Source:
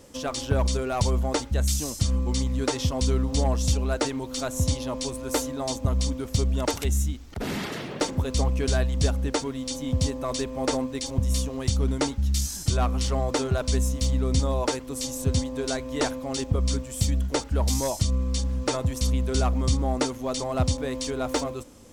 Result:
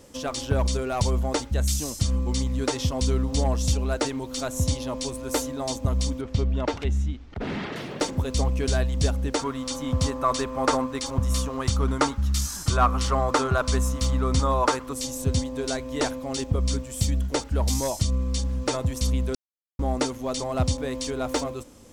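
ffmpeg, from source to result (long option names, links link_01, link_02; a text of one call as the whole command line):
ffmpeg -i in.wav -filter_complex "[0:a]asettb=1/sr,asplit=3[link_01][link_02][link_03];[link_01]atrim=end=6.214[link_04];[link_02]atrim=start=6.21:end=7.76,asetpts=PTS-STARTPTS,afade=type=in:duration=0.004:curve=qsin,afade=type=out:start_time=1.546:duration=0.004:curve=qsin,lowpass=3200[link_05];[link_03]atrim=start=7.756[link_06];[link_04][link_05]acrossfade=duration=0.004:curve1=hsin:curve2=qsin[link_07];[link_07][link_06]acrossfade=duration=0.004:curve1=qsin:curve2=hsin,asettb=1/sr,asplit=3[link_08][link_09][link_10];[link_08]atrim=end=9.394[link_11];[link_09]atrim=start=9.39:end=14.93,asetpts=PTS-STARTPTS,afade=type=in:duration=0.004:curve=qsin,afade=type=out:start_time=5.536:duration=0.004:curve=qsin,equalizer=frequency=1200:width=1.5:gain=13[link_12];[link_10]atrim=start=14.926[link_13];[link_11][link_12]acrossfade=duration=0.004:curve1=hsin:curve2=qsin[link_14];[link_14][link_13]acrossfade=duration=0.004:curve1=qsin:curve2=hsin,asplit=3[link_15][link_16][link_17];[link_15]atrim=end=19.35,asetpts=PTS-STARTPTS,afade=type=out:start_time=19.346:duration=0.004:curve=hsin[link_18];[link_16]atrim=start=19.35:end=19.79,asetpts=PTS-STARTPTS,volume=0[link_19];[link_17]atrim=start=19.79,asetpts=PTS-STARTPTS,afade=type=in:duration=0.004:curve=hsin[link_20];[link_18][link_19][link_20]concat=n=3:v=0:a=1" out.wav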